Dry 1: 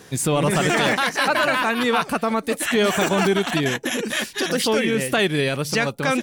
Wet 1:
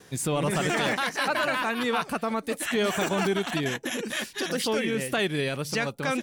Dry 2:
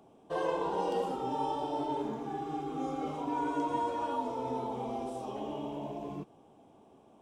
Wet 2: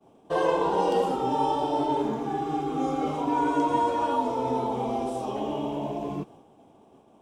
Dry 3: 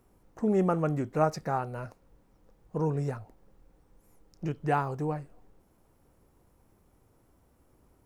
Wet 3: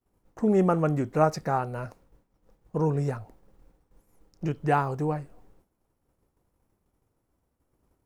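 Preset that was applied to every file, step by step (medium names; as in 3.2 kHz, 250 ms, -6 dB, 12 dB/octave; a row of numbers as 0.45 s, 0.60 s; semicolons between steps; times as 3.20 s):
expander -54 dBFS; normalise loudness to -27 LUFS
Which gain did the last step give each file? -6.5 dB, +8.0 dB, +3.5 dB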